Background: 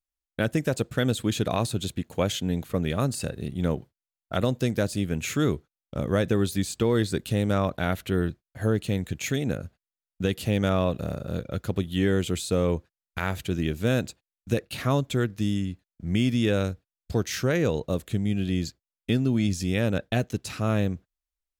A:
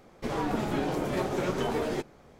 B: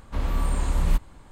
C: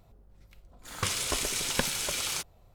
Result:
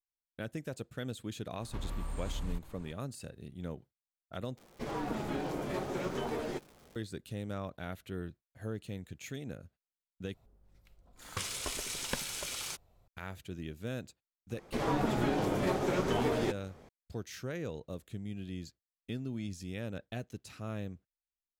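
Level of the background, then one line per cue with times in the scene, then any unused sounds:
background −15 dB
0:01.61: mix in B −5.5 dB + downward compressor 3 to 1, threshold −31 dBFS
0:04.57: overwrite with A −6.5 dB + surface crackle 260 per second −40 dBFS
0:10.34: overwrite with C −7.5 dB
0:14.50: mix in A −1.5 dB

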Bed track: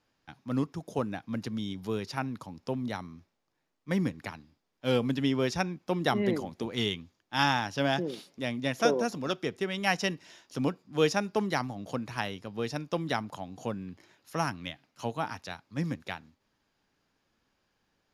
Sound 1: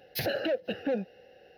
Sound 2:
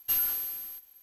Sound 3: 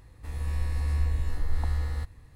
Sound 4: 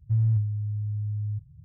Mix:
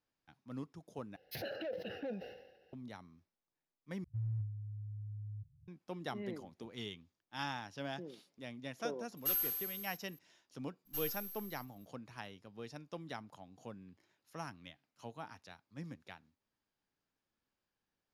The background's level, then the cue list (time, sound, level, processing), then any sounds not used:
bed track −14.5 dB
0:01.16: overwrite with 1 −12.5 dB + level that may fall only so fast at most 59 dB per second
0:04.04: overwrite with 4 −15 dB + high-pass filter 45 Hz
0:09.17: mix in 2 −7 dB
0:10.85: mix in 2 −10.5 dB, fades 0.02 s + gain on one half-wave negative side −12 dB
not used: 3

